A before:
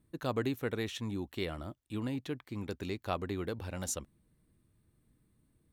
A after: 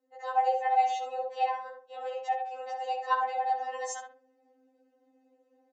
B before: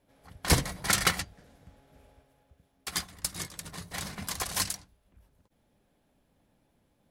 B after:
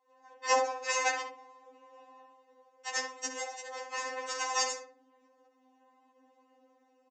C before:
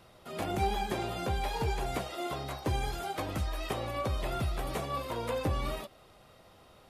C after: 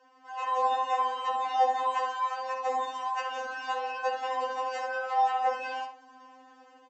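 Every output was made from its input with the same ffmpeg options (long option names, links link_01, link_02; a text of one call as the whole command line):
ffmpeg -i in.wav -filter_complex "[0:a]bandreject=frequency=50:width_type=h:width=6,bandreject=frequency=100:width_type=h:width=6,bandreject=frequency=150:width_type=h:width=6,bandreject=frequency=200:width_type=h:width=6,bandreject=frequency=250:width_type=h:width=6,bandreject=frequency=300:width_type=h:width=6,bandreject=frequency=350:width_type=h:width=6,bandreject=frequency=400:width_type=h:width=6,bandreject=frequency=450:width_type=h:width=6,afreqshift=320,lowshelf=frequency=170:width_type=q:width=1.5:gain=-8.5,aecho=1:1:2.8:0.93,dynaudnorm=framelen=320:gausssize=3:maxgain=5.5dB,equalizer=frequency=250:width_type=o:width=0.67:gain=8,equalizer=frequency=630:width_type=o:width=0.67:gain=7,equalizer=frequency=4000:width_type=o:width=0.67:gain=-9,tremolo=f=68:d=0.788,asplit=2[link_01][link_02];[link_02]adelay=65,lowpass=frequency=2000:poles=1,volume=-4dB,asplit=2[link_03][link_04];[link_04]adelay=65,lowpass=frequency=2000:poles=1,volume=0.26,asplit=2[link_05][link_06];[link_06]adelay=65,lowpass=frequency=2000:poles=1,volume=0.26,asplit=2[link_07][link_08];[link_08]adelay=65,lowpass=frequency=2000:poles=1,volume=0.26[link_09];[link_01][link_03][link_05][link_07][link_09]amix=inputs=5:normalize=0,aresample=16000,aresample=44100,afftfilt=real='re*3.46*eq(mod(b,12),0)':imag='im*3.46*eq(mod(b,12),0)':win_size=2048:overlap=0.75" out.wav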